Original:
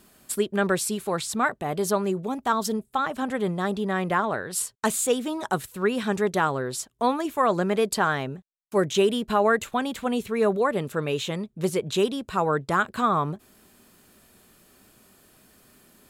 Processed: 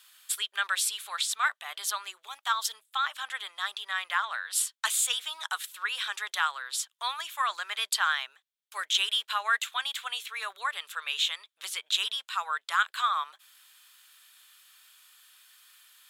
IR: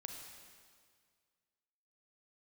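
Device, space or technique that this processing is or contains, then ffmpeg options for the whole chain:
headphones lying on a table: -af "highpass=f=1.2k:w=0.5412,highpass=f=1.2k:w=1.3066,equalizer=f=3.4k:t=o:w=0.52:g=9"

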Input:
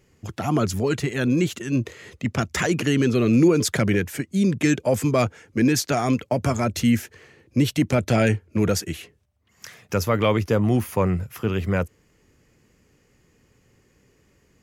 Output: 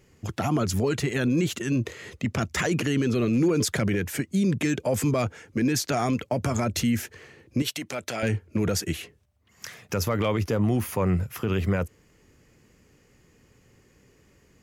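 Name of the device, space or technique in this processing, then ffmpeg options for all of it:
clipper into limiter: -filter_complex "[0:a]asoftclip=type=hard:threshold=-10dB,alimiter=limit=-17.5dB:level=0:latency=1:release=56,asettb=1/sr,asplit=3[a][b][c];[a]atrim=end=7.624[d];[b]atrim=start=7.62:end=8.23,asetpts=PTS-STARTPTS,afade=t=in:d=0.004:c=qsin,afade=t=out:st=0.606:d=0.004:c=qsin,highpass=f=870:p=1[e];[c]atrim=start=8.226[f];[d][e]acrossfade=d=0.004:c1=hsin:c2=qsin[g];[g][f]acrossfade=d=0.004:c1=qsin:c2=hsin,volume=1.5dB"

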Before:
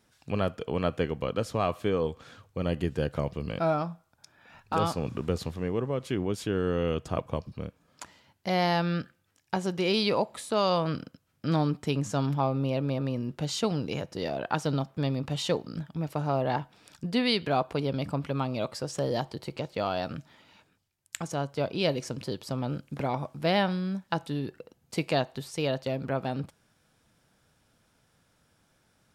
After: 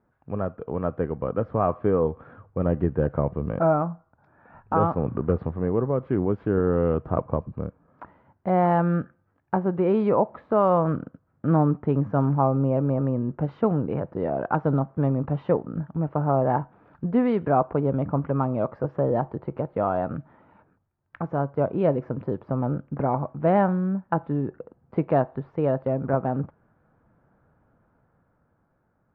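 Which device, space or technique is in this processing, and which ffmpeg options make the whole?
action camera in a waterproof case: -af "lowpass=f=1.4k:w=0.5412,lowpass=f=1.4k:w=1.3066,dynaudnorm=f=230:g=11:m=6dB" -ar 32000 -c:a aac -b:a 48k

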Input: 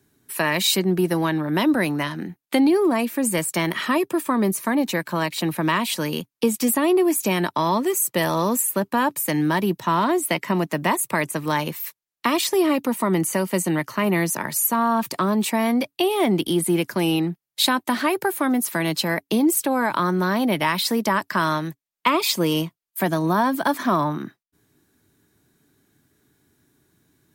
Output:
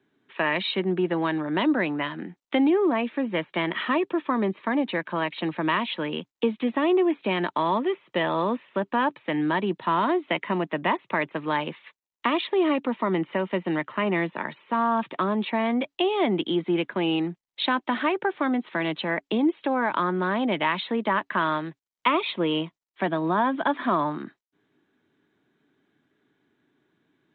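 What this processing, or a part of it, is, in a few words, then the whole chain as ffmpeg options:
Bluetooth headset: -af "highpass=210,aresample=8000,aresample=44100,volume=-2.5dB" -ar 16000 -c:a sbc -b:a 64k

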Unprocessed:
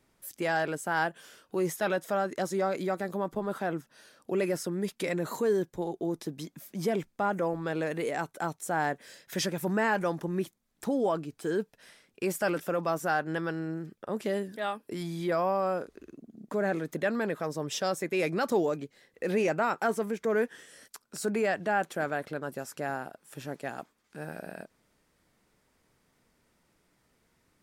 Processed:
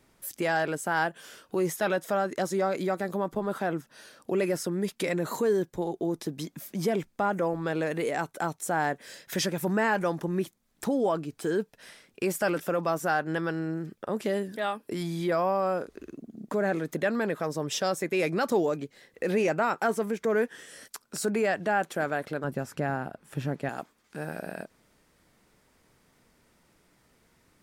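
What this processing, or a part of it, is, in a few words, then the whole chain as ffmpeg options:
parallel compression: -filter_complex "[0:a]asplit=2[a][b];[b]acompressor=threshold=-38dB:ratio=6,volume=-1dB[c];[a][c]amix=inputs=2:normalize=0,asettb=1/sr,asplit=3[d][e][f];[d]atrim=end=22.444[g];[e]atrim=start=22.44:end=23.69,asetpts=PTS-STARTPTS,afade=t=in:d=0.004:c=qsin,afade=t=out:st=1.246:d=0.004:c=qsin,bass=f=250:g=9,treble=f=4k:g=-8[h];[f]atrim=start=23.686[i];[g][h]acrossfade=d=0.004:c1=hsin:c2=qsin[j];[j][i]acrossfade=d=0.004:c1=qsin:c2=hsin"

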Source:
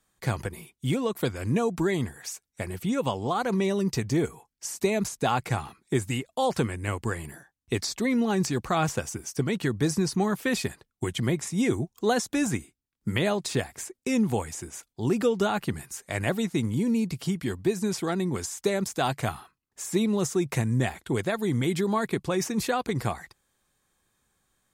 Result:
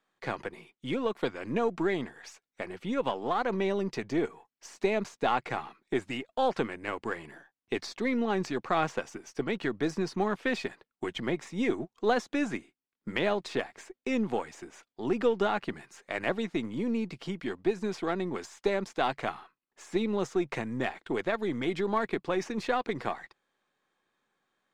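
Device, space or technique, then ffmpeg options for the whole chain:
crystal radio: -af "highpass=270,lowpass=3.3k,aeval=exprs='if(lt(val(0),0),0.708*val(0),val(0))':c=same"

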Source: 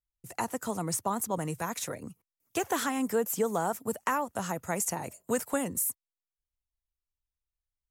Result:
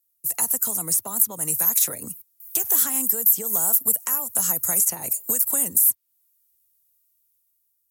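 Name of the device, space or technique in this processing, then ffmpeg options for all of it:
FM broadcast chain: -filter_complex "[0:a]highpass=69,dynaudnorm=f=300:g=7:m=5.5dB,acrossover=split=120|4900[a][b][c];[a]acompressor=threshold=-52dB:ratio=4[d];[b]acompressor=threshold=-33dB:ratio=4[e];[c]acompressor=threshold=-40dB:ratio=4[f];[d][e][f]amix=inputs=3:normalize=0,aemphasis=mode=production:type=50fm,alimiter=limit=-17dB:level=0:latency=1:release=307,asoftclip=type=hard:threshold=-19.5dB,lowpass=f=15k:w=0.5412,lowpass=f=15k:w=1.3066,aemphasis=mode=production:type=50fm"

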